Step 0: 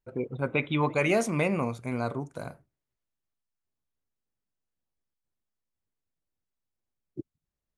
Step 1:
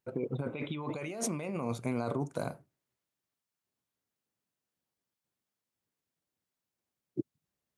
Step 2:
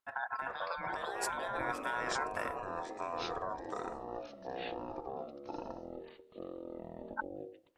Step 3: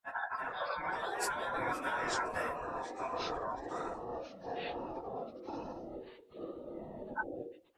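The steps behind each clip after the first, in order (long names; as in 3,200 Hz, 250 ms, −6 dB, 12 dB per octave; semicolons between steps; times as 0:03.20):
compressor whose output falls as the input rises −33 dBFS, ratio −1; high-pass filter 120 Hz 12 dB per octave; dynamic equaliser 1,800 Hz, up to −5 dB, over −52 dBFS, Q 1.4; level −1 dB
tape wow and flutter 27 cents; ring modulation 1,200 Hz; delay with pitch and tempo change per echo 377 ms, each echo −6 semitones, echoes 3; level −1 dB
random phases in long frames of 50 ms; level +1 dB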